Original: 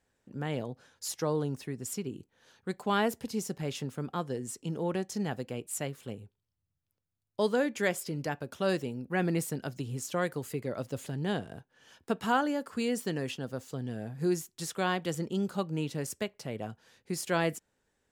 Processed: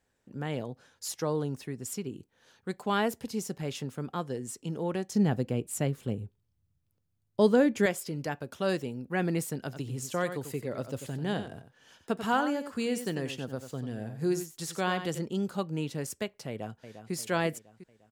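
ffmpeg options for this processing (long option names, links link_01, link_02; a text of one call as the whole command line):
ffmpeg -i in.wav -filter_complex "[0:a]asettb=1/sr,asplit=3[link_01][link_02][link_03];[link_01]atrim=end=5.154[link_04];[link_02]atrim=start=5.15:end=7.86,asetpts=PTS-STARTPTS,afade=type=in:duration=0.004:curve=qsin,afade=type=out:start_time=2.706:duration=0.004:curve=qsin,lowshelf=frequency=450:gain=10.5[link_05];[link_03]atrim=start=7.856[link_06];[link_04][link_05]acrossfade=duration=0.004:curve1=hsin:curve2=qsin[link_07];[link_07][link_06]acrossfade=duration=0.004:curve1=qsin:curve2=hsin,asplit=3[link_08][link_09][link_10];[link_08]afade=type=out:start_time=9.7:duration=0.02[link_11];[link_09]aecho=1:1:92:0.316,afade=type=in:start_time=9.7:duration=0.02,afade=type=out:start_time=15.18:duration=0.02[link_12];[link_10]afade=type=in:start_time=15.18:duration=0.02[link_13];[link_11][link_12][link_13]amix=inputs=3:normalize=0,asplit=2[link_14][link_15];[link_15]afade=type=in:start_time=16.48:duration=0.01,afade=type=out:start_time=17.13:duration=0.01,aecho=0:1:350|700|1050|1400|1750|2100:0.316228|0.173925|0.0956589|0.0526124|0.0289368|0.0159152[link_16];[link_14][link_16]amix=inputs=2:normalize=0" out.wav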